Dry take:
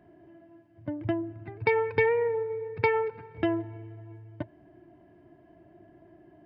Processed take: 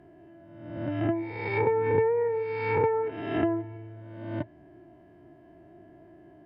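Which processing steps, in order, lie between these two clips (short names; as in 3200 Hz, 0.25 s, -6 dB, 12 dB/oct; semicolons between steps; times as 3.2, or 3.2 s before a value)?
spectral swells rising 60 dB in 1.07 s; treble ducked by the level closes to 910 Hz, closed at -20 dBFS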